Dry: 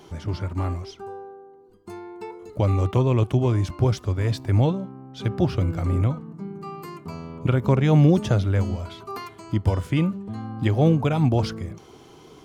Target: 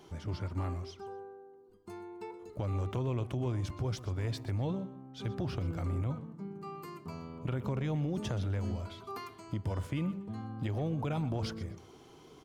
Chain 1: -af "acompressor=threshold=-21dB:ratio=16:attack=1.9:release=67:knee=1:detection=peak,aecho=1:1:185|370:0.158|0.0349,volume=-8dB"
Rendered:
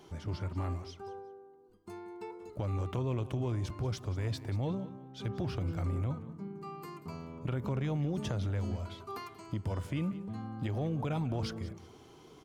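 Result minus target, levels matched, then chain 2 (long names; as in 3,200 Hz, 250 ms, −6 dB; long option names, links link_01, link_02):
echo 60 ms late
-af "acompressor=threshold=-21dB:ratio=16:attack=1.9:release=67:knee=1:detection=peak,aecho=1:1:125|250:0.158|0.0349,volume=-8dB"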